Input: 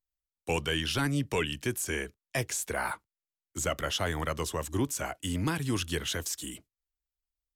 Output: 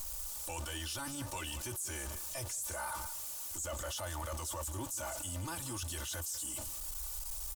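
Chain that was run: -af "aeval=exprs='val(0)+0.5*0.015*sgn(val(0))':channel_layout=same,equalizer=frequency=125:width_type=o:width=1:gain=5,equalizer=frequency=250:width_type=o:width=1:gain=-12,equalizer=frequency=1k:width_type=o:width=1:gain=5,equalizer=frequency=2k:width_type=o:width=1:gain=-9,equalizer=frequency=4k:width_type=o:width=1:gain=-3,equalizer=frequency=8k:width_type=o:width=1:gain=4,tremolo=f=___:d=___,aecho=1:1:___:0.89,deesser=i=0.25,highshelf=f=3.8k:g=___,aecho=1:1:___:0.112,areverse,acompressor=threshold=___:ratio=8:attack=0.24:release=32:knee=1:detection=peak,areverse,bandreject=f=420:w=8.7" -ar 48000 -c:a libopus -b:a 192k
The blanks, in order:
6.7, 0.37, 3.4, 7.5, 184, -35dB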